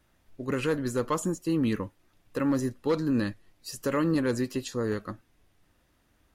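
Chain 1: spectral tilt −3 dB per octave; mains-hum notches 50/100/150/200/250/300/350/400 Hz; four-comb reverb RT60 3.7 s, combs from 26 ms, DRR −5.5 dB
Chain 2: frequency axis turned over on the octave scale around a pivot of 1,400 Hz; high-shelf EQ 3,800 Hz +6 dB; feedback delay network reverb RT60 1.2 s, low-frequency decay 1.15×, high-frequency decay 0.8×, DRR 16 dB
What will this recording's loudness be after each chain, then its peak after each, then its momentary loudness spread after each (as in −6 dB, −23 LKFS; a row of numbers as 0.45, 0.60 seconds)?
−19.0, −28.0 LKFS; −4.5, −14.5 dBFS; 12, 13 LU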